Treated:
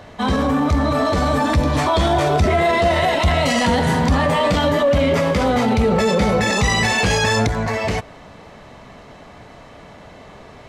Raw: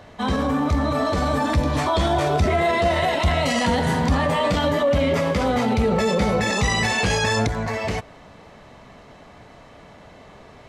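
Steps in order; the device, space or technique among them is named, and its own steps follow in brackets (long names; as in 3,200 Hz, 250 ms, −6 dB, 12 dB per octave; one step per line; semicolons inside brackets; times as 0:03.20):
parallel distortion (in parallel at −8 dB: hard clipping −21 dBFS, distortion −9 dB)
on the sum: level +1.5 dB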